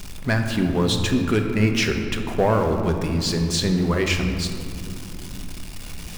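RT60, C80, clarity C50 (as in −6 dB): non-exponential decay, 6.5 dB, 6.0 dB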